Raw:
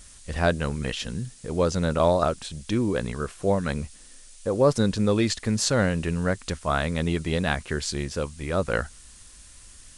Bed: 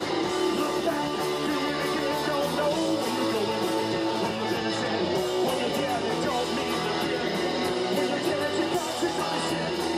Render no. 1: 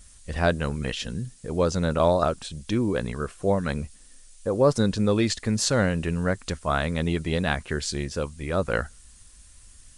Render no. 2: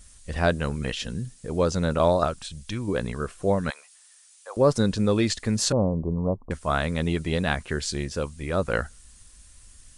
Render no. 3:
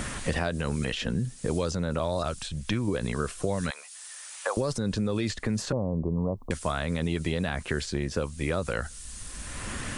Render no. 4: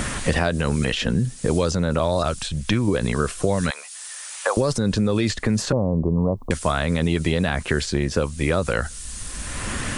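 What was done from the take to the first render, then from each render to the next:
denoiser 6 dB, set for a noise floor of -49 dBFS
2.25–2.87 bell 370 Hz -5.5 dB -> -12.5 dB 2.1 oct; 3.7–4.57 HPF 790 Hz 24 dB/oct; 5.72–6.51 steep low-pass 1100 Hz 96 dB/oct
limiter -19 dBFS, peak gain reduction 10 dB; three-band squash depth 100%
gain +7.5 dB

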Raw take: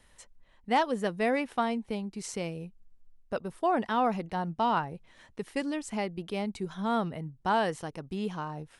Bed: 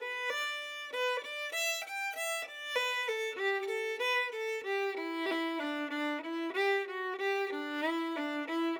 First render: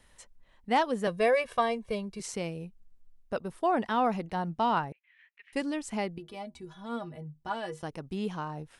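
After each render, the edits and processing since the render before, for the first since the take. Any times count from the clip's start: 1.07–2.2 comb 1.8 ms, depth 95%; 4.92–5.53 Butterworth band-pass 2200 Hz, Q 2.2; 6.18–7.83 metallic resonator 72 Hz, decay 0.24 s, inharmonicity 0.03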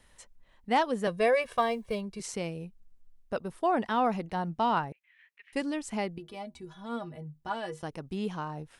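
1.42–2.01 companded quantiser 8-bit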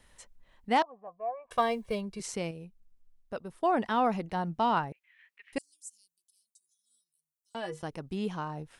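0.82–1.51 vocal tract filter a; 2.51–3.63 gain -5 dB; 5.58–7.55 inverse Chebyshev high-pass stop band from 2100 Hz, stop band 60 dB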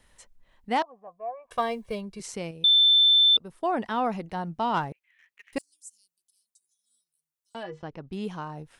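2.64–3.37 bleep 3540 Hz -15 dBFS; 4.74–5.72 sample leveller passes 1; 7.63–8.13 air absorption 180 m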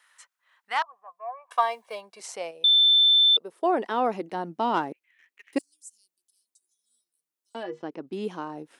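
high-pass sweep 1300 Hz -> 300 Hz, 0.65–4.37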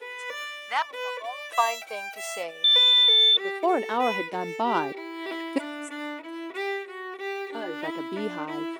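add bed 0 dB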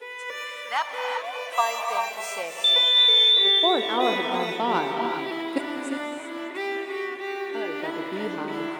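non-linear reverb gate 0.41 s rising, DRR 3.5 dB; warbling echo 0.198 s, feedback 77%, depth 167 cents, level -16.5 dB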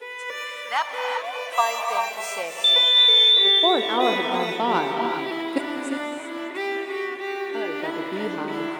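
gain +2 dB

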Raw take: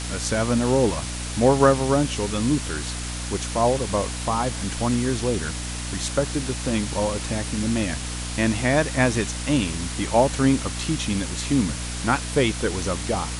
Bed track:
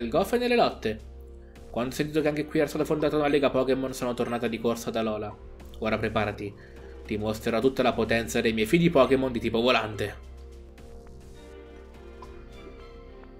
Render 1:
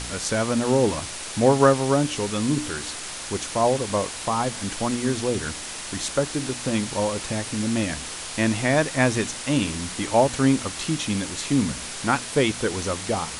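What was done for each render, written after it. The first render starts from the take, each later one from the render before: de-hum 60 Hz, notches 5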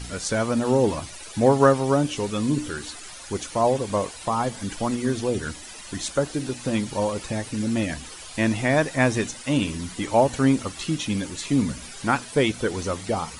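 denoiser 13 dB, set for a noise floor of -35 dBFS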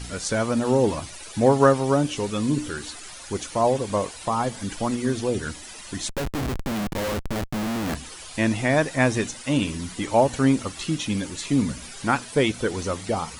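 6.09–7.95 Schmitt trigger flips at -28.5 dBFS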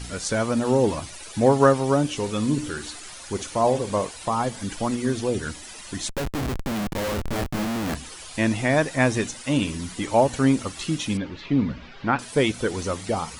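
2.19–4.06 flutter echo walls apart 9.7 m, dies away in 0.24 s; 7.16–7.65 doubler 25 ms -2.5 dB; 11.17–12.19 Bessel low-pass 2700 Hz, order 6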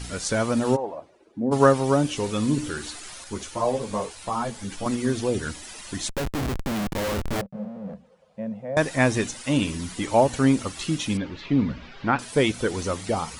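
0.75–1.51 band-pass 910 Hz -> 220 Hz, Q 2.9; 3.24–4.86 ensemble effect; 7.41–8.77 double band-pass 320 Hz, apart 1.4 oct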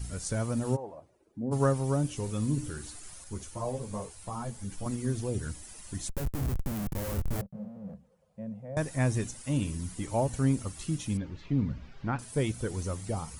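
EQ curve 120 Hz 0 dB, 250 Hz -9 dB, 3700 Hz -15 dB, 13000 Hz 0 dB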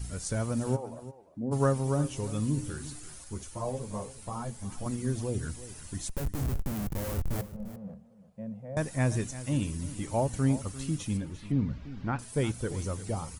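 echo 0.347 s -15 dB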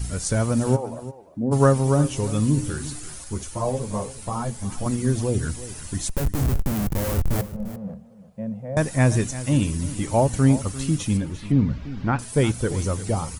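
gain +9 dB

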